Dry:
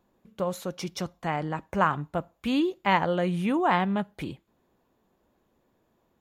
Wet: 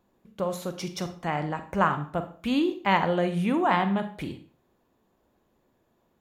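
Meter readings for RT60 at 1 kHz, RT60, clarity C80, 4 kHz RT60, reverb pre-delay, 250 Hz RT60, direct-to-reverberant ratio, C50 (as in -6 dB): 0.45 s, 0.45 s, 15.5 dB, 0.35 s, 33 ms, 0.45 s, 9.0 dB, 11.5 dB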